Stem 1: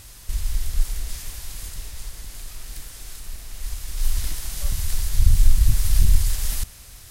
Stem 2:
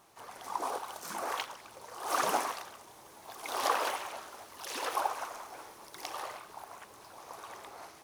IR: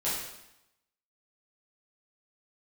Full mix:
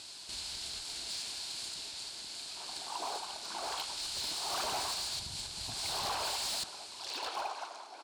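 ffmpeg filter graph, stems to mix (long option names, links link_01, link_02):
-filter_complex "[0:a]acompressor=threshold=-15dB:ratio=3,volume=0.5dB[link_01];[1:a]adelay=2400,volume=0dB[link_02];[link_01][link_02]amix=inputs=2:normalize=0,highpass=370,equalizer=frequency=500:width_type=q:width=4:gain=-9,equalizer=frequency=1200:width_type=q:width=4:gain=-7,equalizer=frequency=1900:width_type=q:width=4:gain=-10,equalizer=frequency=4300:width_type=q:width=4:gain=9,equalizer=frequency=6200:width_type=q:width=4:gain=-6,lowpass=frequency=8000:width=0.5412,lowpass=frequency=8000:width=1.3066,volume=32dB,asoftclip=hard,volume=-32dB"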